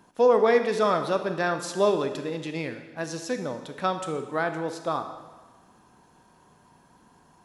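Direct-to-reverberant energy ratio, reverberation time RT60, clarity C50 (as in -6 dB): 7.5 dB, 1.3 s, 8.5 dB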